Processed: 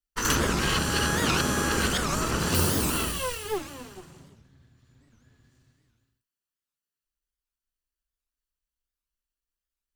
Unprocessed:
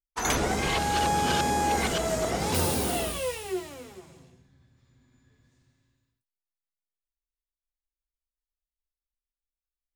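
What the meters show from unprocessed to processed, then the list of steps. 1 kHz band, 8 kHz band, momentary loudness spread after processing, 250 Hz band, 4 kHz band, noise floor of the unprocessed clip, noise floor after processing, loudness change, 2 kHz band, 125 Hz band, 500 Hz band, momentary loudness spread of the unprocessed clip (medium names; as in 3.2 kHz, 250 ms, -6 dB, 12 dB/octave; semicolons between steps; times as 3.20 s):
-3.5 dB, +3.0 dB, 10 LU, +2.5 dB, +3.0 dB, under -85 dBFS, under -85 dBFS, +1.5 dB, +3.5 dB, +3.5 dB, -2.0 dB, 9 LU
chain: comb filter that takes the minimum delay 0.69 ms; warped record 78 rpm, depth 250 cents; trim +3.5 dB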